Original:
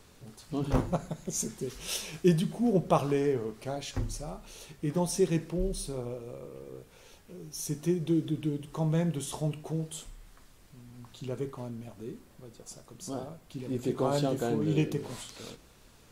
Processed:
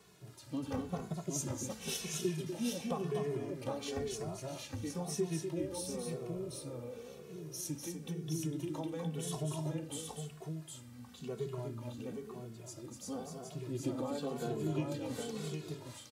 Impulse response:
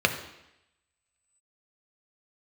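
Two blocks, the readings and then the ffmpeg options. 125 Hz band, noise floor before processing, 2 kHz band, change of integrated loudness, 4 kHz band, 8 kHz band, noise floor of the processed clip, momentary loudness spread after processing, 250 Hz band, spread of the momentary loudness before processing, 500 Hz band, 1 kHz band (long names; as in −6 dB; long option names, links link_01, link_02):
−7.5 dB, −58 dBFS, −5.5 dB, −8.0 dB, −3.5 dB, −3.5 dB, −54 dBFS, 10 LU, −7.5 dB, 19 LU, −7.0 dB, −8.5 dB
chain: -filter_complex "[0:a]highpass=frequency=74:width=0.5412,highpass=frequency=74:width=1.3066,acompressor=threshold=-30dB:ratio=10,asplit=2[link_01][link_02];[link_02]aecho=0:1:246|763:0.531|0.631[link_03];[link_01][link_03]amix=inputs=2:normalize=0,asplit=2[link_04][link_05];[link_05]adelay=2.3,afreqshift=-0.97[link_06];[link_04][link_06]amix=inputs=2:normalize=1,volume=-1dB"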